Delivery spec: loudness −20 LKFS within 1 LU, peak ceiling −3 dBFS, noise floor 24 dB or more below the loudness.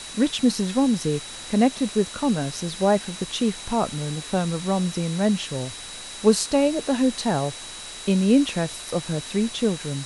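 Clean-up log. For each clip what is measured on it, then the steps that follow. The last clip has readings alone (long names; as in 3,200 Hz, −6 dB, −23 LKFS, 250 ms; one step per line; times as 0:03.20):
interfering tone 3,900 Hz; level of the tone −40 dBFS; background noise floor −38 dBFS; target noise floor −48 dBFS; integrated loudness −23.5 LKFS; sample peak −5.0 dBFS; target loudness −20.0 LKFS
→ notch filter 3,900 Hz, Q 30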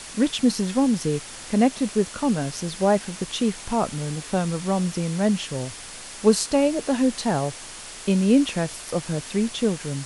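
interfering tone none found; background noise floor −39 dBFS; target noise floor −48 dBFS
→ noise reduction from a noise print 9 dB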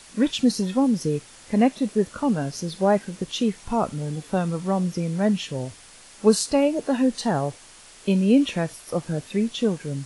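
background noise floor −48 dBFS; integrated loudness −24.0 LKFS; sample peak −5.0 dBFS; target loudness −20.0 LKFS
→ level +4 dB
brickwall limiter −3 dBFS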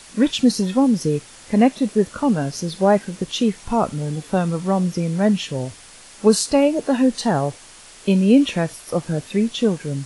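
integrated loudness −20.0 LKFS; sample peak −3.0 dBFS; background noise floor −44 dBFS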